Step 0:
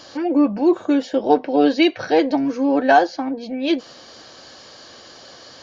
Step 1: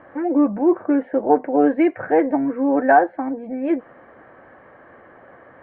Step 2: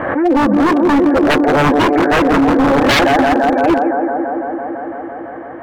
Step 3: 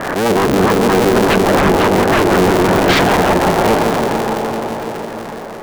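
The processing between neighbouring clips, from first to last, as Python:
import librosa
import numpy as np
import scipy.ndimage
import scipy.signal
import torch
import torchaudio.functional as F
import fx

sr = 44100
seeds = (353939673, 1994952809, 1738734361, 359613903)

y1 = scipy.signal.sosfilt(scipy.signal.ellip(4, 1.0, 60, 2000.0, 'lowpass', fs=sr, output='sos'), x)
y2 = fx.echo_bbd(y1, sr, ms=168, stages=2048, feedback_pct=83, wet_db=-7.5)
y2 = 10.0 ** (-15.5 / 20.0) * (np.abs((y2 / 10.0 ** (-15.5 / 20.0) + 3.0) % 4.0 - 2.0) - 1.0)
y2 = fx.pre_swell(y2, sr, db_per_s=41.0)
y2 = F.gain(torch.from_numpy(y2), 9.0).numpy()
y3 = fx.cycle_switch(y2, sr, every=3, mode='inverted')
y3 = fx.echo_opening(y3, sr, ms=143, hz=200, octaves=1, feedback_pct=70, wet_db=-3)
y3 = F.gain(torch.from_numpy(y3), -1.5).numpy()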